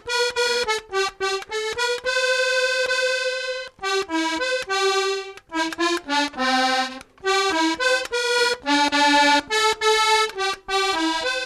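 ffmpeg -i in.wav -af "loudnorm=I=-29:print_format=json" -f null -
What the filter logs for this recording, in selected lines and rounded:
"input_i" : "-20.3",
"input_tp" : "-7.3",
"input_lra" : "3.5",
"input_thresh" : "-30.3",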